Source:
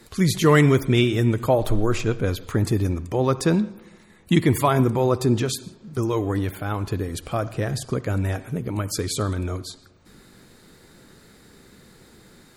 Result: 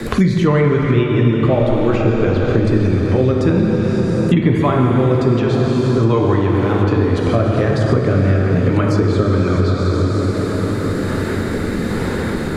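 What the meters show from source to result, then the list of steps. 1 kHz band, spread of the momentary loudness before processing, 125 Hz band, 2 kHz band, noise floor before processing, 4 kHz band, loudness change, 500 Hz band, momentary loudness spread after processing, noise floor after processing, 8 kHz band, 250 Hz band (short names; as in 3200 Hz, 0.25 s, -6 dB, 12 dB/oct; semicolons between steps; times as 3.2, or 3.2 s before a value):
+5.5 dB, 10 LU, +8.5 dB, +5.5 dB, -53 dBFS, +1.0 dB, +7.0 dB, +8.0 dB, 6 LU, -21 dBFS, n/a, +8.5 dB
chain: AGC gain up to 8.5 dB; rotary speaker horn 7.5 Hz, later 1.2 Hz, at 1.45; plate-style reverb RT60 4.3 s, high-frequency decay 0.65×, DRR -1.5 dB; treble ducked by the level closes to 2800 Hz, closed at -11.5 dBFS; three-band squash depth 100%; gain -1 dB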